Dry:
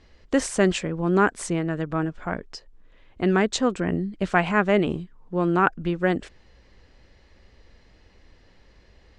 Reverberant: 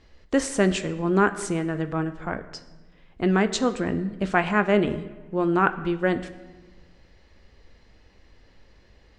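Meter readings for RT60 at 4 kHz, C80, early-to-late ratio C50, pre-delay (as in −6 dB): 0.90 s, 15.5 dB, 14.0 dB, 9 ms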